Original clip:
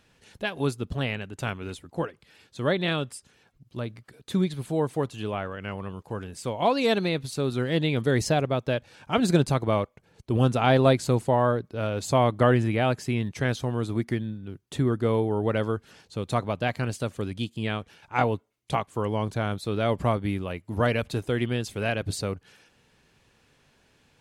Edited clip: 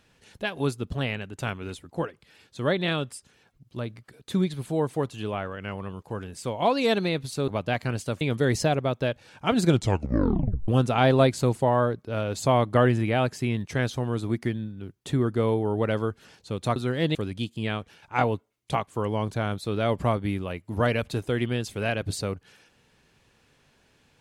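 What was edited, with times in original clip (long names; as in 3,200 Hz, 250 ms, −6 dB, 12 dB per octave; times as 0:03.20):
0:07.48–0:07.87: swap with 0:16.42–0:17.15
0:09.32: tape stop 1.02 s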